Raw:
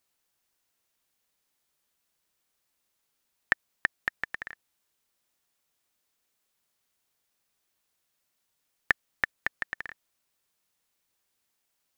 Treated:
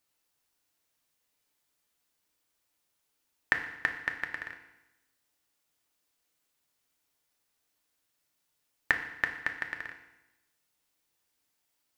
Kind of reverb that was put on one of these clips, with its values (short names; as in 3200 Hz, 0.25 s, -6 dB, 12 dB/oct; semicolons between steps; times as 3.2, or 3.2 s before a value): FDN reverb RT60 0.96 s, low-frequency decay 1.1×, high-frequency decay 0.95×, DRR 4 dB; gain -2 dB